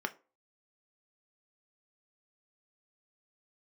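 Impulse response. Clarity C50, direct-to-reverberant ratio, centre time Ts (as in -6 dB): 19.5 dB, 6.5 dB, 4 ms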